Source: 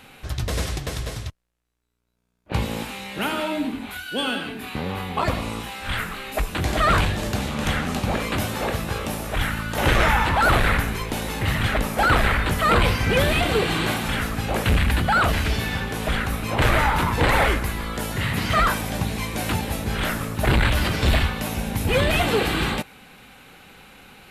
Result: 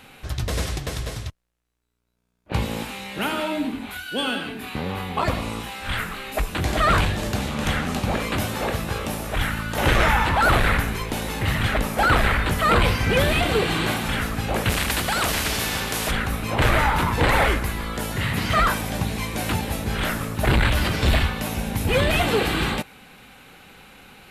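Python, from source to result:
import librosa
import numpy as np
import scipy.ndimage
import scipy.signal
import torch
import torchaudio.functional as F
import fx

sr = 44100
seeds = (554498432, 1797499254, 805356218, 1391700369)

y = fx.spectral_comp(x, sr, ratio=2.0, at=(14.69, 16.1), fade=0.02)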